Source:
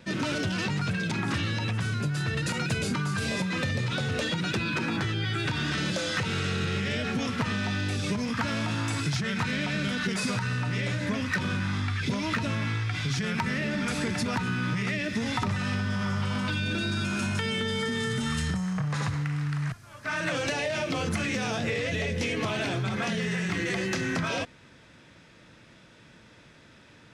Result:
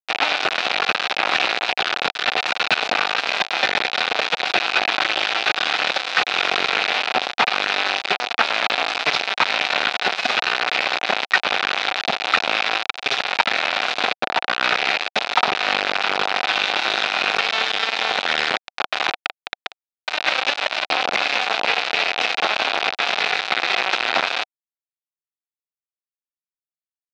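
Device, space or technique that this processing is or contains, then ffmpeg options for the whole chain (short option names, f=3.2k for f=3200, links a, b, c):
hand-held game console: -filter_complex "[0:a]asettb=1/sr,asplit=3[a][b][c];[a]atrim=end=14.134[d];[b]atrim=start=14.13:end=14.6,asetpts=PTS-STARTPTS,afade=t=in:d=0.004:c=qsin,afade=t=out:st=0.466:d=0.004:c=qsin,lowpass=1.7k[e];[c]atrim=start=14.596[f];[d][e]acrossfade=d=0.004:c1=hsin:c2=qsin[g];[g][f]acrossfade=d=0.004:c1=qsin:c2=hsin,acrusher=bits=3:mix=0:aa=0.000001,highpass=480,equalizer=f=750:t=q:w=4:g=9,equalizer=f=1.4k:t=q:w=4:g=4,equalizer=f=2.5k:t=q:w=4:g=7,equalizer=f=3.8k:t=q:w=4:g=5,lowpass=f=4.6k:w=0.5412,lowpass=f=4.6k:w=1.3066,volume=8dB"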